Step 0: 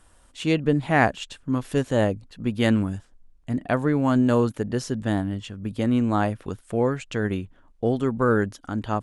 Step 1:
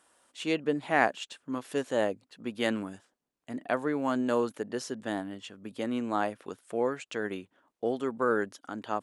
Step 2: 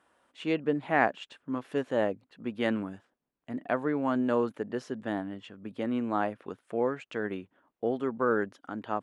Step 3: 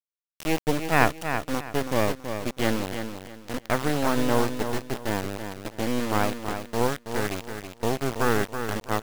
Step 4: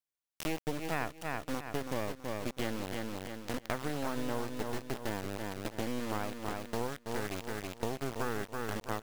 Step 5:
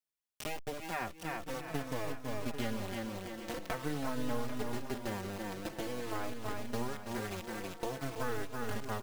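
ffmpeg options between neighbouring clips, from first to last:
-af "highpass=320,volume=-4.5dB"
-af "bass=f=250:g=3,treble=f=4k:g=-15"
-filter_complex "[0:a]acrusher=bits=3:dc=4:mix=0:aa=0.000001,asplit=2[a][b];[b]aecho=0:1:327|654|981:0.398|0.111|0.0312[c];[a][c]amix=inputs=2:normalize=0,volume=6.5dB"
-af "acompressor=threshold=-32dB:ratio=4"
-filter_complex "[0:a]asplit=2[a][b];[b]aecho=0:1:794|1588|2382|3176:0.282|0.118|0.0497|0.0209[c];[a][c]amix=inputs=2:normalize=0,asplit=2[d][e];[e]adelay=4.2,afreqshift=-0.48[f];[d][f]amix=inputs=2:normalize=1,volume=1dB"

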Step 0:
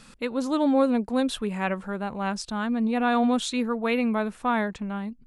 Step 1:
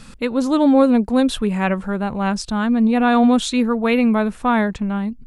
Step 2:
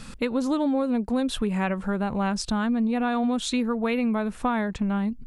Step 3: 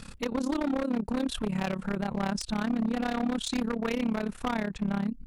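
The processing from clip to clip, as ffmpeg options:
-af "lowshelf=f=170:g=9,volume=6dB"
-af "acompressor=threshold=-22dB:ratio=6"
-af "tremolo=f=34:d=0.857,aeval=exprs='0.0841*(abs(mod(val(0)/0.0841+3,4)-2)-1)':c=same"

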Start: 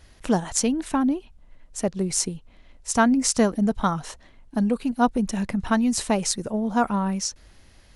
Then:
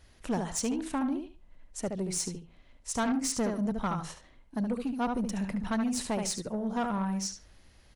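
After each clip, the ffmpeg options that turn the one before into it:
-filter_complex "[0:a]asplit=2[a][b];[b]adelay=72,lowpass=f=4.2k:p=1,volume=-6.5dB,asplit=2[c][d];[d]adelay=72,lowpass=f=4.2k:p=1,volume=0.2,asplit=2[e][f];[f]adelay=72,lowpass=f=4.2k:p=1,volume=0.2[g];[a][c][e][g]amix=inputs=4:normalize=0,asoftclip=type=tanh:threshold=-17.5dB,volume=-6.5dB"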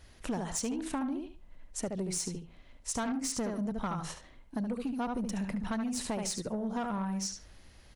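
-af "acompressor=threshold=-34dB:ratio=6,volume=2.5dB"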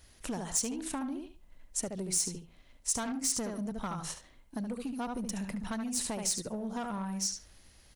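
-filter_complex "[0:a]highshelf=f=5.2k:g=11.5,asplit=2[a][b];[b]aeval=exprs='sgn(val(0))*max(abs(val(0))-0.00398,0)':c=same,volume=-11dB[c];[a][c]amix=inputs=2:normalize=0,volume=-4.5dB"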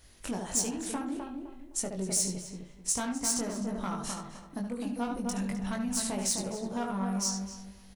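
-filter_complex "[0:a]asplit=2[a][b];[b]adelay=21,volume=-4dB[c];[a][c]amix=inputs=2:normalize=0,asplit=2[d][e];[e]adelay=257,lowpass=f=1.5k:p=1,volume=-4dB,asplit=2[f][g];[g]adelay=257,lowpass=f=1.5k:p=1,volume=0.3,asplit=2[h][i];[i]adelay=257,lowpass=f=1.5k:p=1,volume=0.3,asplit=2[j][k];[k]adelay=257,lowpass=f=1.5k:p=1,volume=0.3[l];[f][h][j][l]amix=inputs=4:normalize=0[m];[d][m]amix=inputs=2:normalize=0"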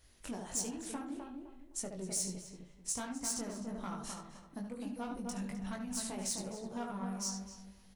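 -af "flanger=delay=1.5:depth=7.8:regen=-66:speed=1.2:shape=triangular,volume=-3dB"

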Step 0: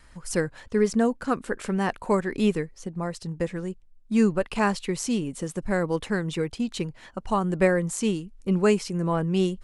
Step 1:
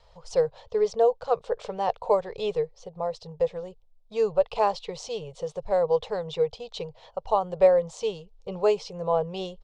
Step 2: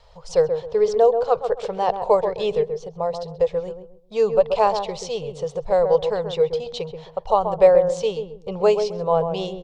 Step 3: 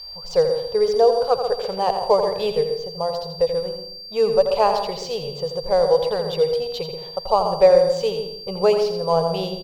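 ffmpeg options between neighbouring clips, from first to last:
-af "firequalizer=gain_entry='entry(140,0);entry(270,-29);entry(450,11);entry(800,10);entry(1600,-10);entry(3500,6);entry(5600,0);entry(11000,-27)':delay=0.05:min_phase=1,volume=-5dB"
-filter_complex "[0:a]asplit=2[a][b];[b]adelay=132,lowpass=f=850:p=1,volume=-5.5dB,asplit=2[c][d];[d]adelay=132,lowpass=f=850:p=1,volume=0.31,asplit=2[e][f];[f]adelay=132,lowpass=f=850:p=1,volume=0.31,asplit=2[g][h];[h]adelay=132,lowpass=f=850:p=1,volume=0.31[i];[a][c][e][g][i]amix=inputs=5:normalize=0,volume=5dB"
-af "aeval=exprs='val(0)+0.0251*sin(2*PI*4700*n/s)':c=same,adynamicsmooth=sensitivity=5:basefreq=5.3k,aecho=1:1:84|168|252|336:0.376|0.139|0.0515|0.019"

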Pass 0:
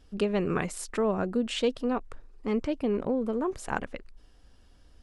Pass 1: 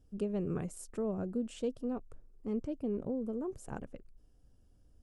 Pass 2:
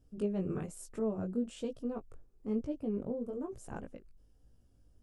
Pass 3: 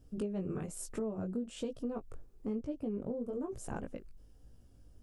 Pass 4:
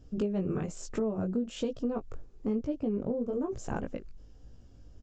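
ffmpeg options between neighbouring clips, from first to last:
-af "equalizer=f=125:t=o:w=1:g=6,equalizer=f=1k:t=o:w=1:g=-7,equalizer=f=2k:t=o:w=1:g=-11,equalizer=f=4k:t=o:w=1:g=-11,volume=-7.5dB"
-af "flanger=delay=17:depth=4.1:speed=1.1,volume=2.5dB"
-af "acompressor=threshold=-41dB:ratio=4,volume=6dB"
-af "aresample=16000,aresample=44100,volume=6dB"

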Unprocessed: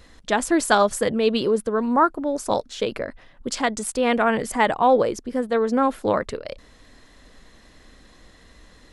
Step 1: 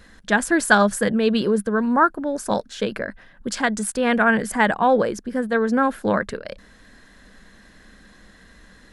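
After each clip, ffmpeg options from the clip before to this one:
-af "equalizer=f=200:t=o:w=0.33:g=10,equalizer=f=1.6k:t=o:w=0.33:g=11,equalizer=f=10k:t=o:w=0.33:g=4,volume=-1dB"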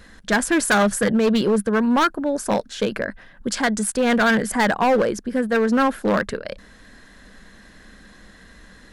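-af "asoftclip=type=hard:threshold=-16dB,volume=2.5dB"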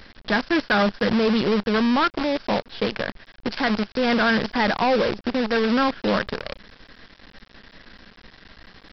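-af "alimiter=limit=-17.5dB:level=0:latency=1:release=78,aresample=11025,acrusher=bits=5:dc=4:mix=0:aa=0.000001,aresample=44100,volume=1.5dB"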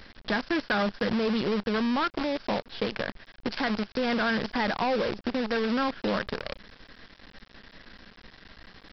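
-af "acompressor=threshold=-21dB:ratio=6,volume=-3dB"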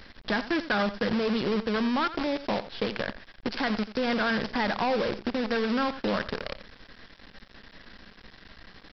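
-af "aecho=1:1:87:0.2"

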